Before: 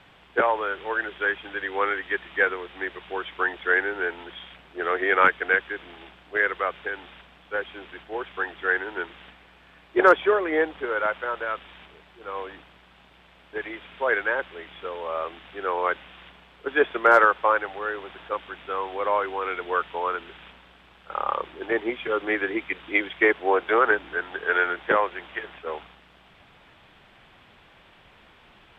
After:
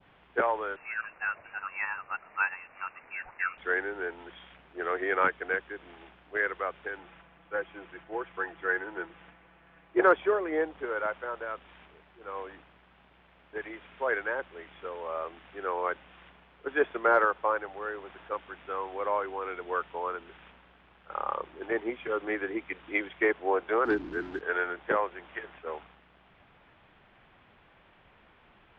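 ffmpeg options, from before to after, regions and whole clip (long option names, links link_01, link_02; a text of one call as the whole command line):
ffmpeg -i in.wav -filter_complex "[0:a]asettb=1/sr,asplit=3[link_01][link_02][link_03];[link_01]atrim=end=0.764[link_04];[link_02]atrim=start=0.76:end=3.58,asetpts=PTS-STARTPTS,afade=type=in:duration=0.004:curve=qsin,afade=type=out:start_time=2.816:duration=0.004:curve=qsin,highpass=420,lowpass=frequency=2600:width_type=q:width=0.5098,lowpass=frequency=2600:width_type=q:width=0.6013,lowpass=frequency=2600:width_type=q:width=0.9,lowpass=frequency=2600:width_type=q:width=2.563,afreqshift=-3100[link_05];[link_03]atrim=start=3.576[link_06];[link_04][link_05]acrossfade=duration=0.004:curve1=hsin:curve2=qsin[link_07];[link_07][link_06]acrossfade=duration=0.004:curve1=qsin:curve2=hsin,asettb=1/sr,asplit=3[link_08][link_09][link_10];[link_08]atrim=end=6.984[link_11];[link_09]atrim=start=6.98:end=10.02,asetpts=PTS-STARTPTS,afade=type=in:duration=0.004:curve=qsin,afade=type=out:start_time=3.036:duration=0.004:curve=qsin,lowpass=3100,aecho=1:1:6:0.47,atrim=end_sample=134064[link_12];[link_10]atrim=start=10.016[link_13];[link_11][link_12]acrossfade=duration=0.004:curve1=hsin:curve2=qsin[link_14];[link_14][link_13]acrossfade=duration=0.004:curve1=qsin:curve2=hsin,asettb=1/sr,asplit=3[link_15][link_16][link_17];[link_15]atrim=end=23.854[link_18];[link_16]atrim=start=23.85:end=24.41,asetpts=PTS-STARTPTS,afade=type=in:duration=0.004:curve=qsin,afade=type=out:start_time=0.556:duration=0.004:curve=qsin,lowshelf=frequency=420:width_type=q:width=3:gain=8,asoftclip=type=hard:threshold=-14.5dB,acrusher=bits=5:mix=0:aa=0.5[link_19];[link_17]atrim=start=24.406[link_20];[link_18][link_19]acrossfade=duration=0.004:curve1=hsin:curve2=qsin[link_21];[link_21][link_20]acrossfade=duration=0.004:curve1=qsin:curve2=hsin,lowpass=2500,adynamicequalizer=threshold=0.0158:dfrequency=1900:dqfactor=0.76:tfrequency=1900:tqfactor=0.76:attack=5:release=100:ratio=0.375:range=2.5:mode=cutabove:tftype=bell,volume=-5dB" out.wav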